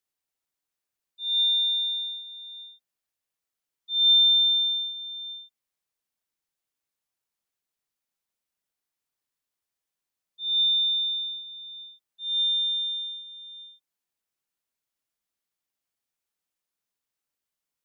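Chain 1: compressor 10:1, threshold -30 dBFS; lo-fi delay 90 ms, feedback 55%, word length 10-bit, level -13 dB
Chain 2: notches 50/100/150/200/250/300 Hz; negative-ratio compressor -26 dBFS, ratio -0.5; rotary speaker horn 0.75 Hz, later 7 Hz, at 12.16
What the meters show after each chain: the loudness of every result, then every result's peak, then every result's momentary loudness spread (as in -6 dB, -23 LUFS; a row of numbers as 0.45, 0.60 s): -27.5, -29.0 LUFS; -24.5, -21.0 dBFS; 12, 15 LU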